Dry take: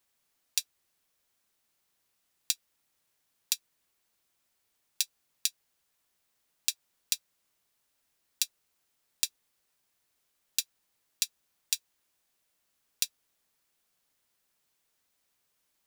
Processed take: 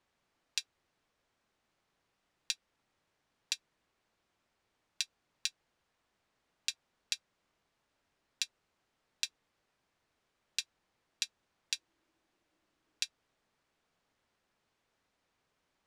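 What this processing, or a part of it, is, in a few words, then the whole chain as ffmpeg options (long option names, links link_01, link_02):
through cloth: -filter_complex "[0:a]lowpass=7000,highshelf=frequency=3000:gain=-13.5,asettb=1/sr,asplit=3[link_01][link_02][link_03];[link_01]atrim=end=11.734[link_04];[link_02]atrim=start=11.73:end=13.03,asetpts=PTS-STARTPTS,afade=type=in:duration=0.004:curve=qsin,afade=type=out:start_time=1.296:duration=0.004:curve=qsin,equalizer=frequency=320:width=5.6:gain=12[link_05];[link_03]atrim=start=13.026[link_06];[link_04][link_05]acrossfade=duration=0.004:curve1=hsin:curve2=qsin[link_07];[link_07][link_06]acrossfade=duration=0.004:curve1=qsin:curve2=hsin,volume=6dB"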